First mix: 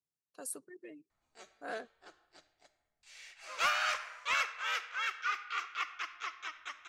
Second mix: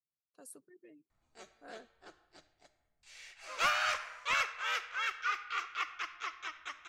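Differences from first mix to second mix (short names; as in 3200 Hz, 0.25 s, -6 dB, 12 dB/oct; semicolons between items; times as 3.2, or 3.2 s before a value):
speech -11.0 dB; master: add low shelf 310 Hz +8 dB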